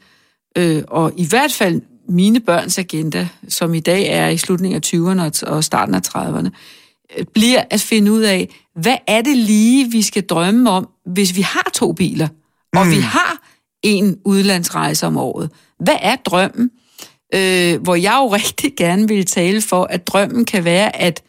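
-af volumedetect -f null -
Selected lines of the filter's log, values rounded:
mean_volume: -15.4 dB
max_volume: -1.9 dB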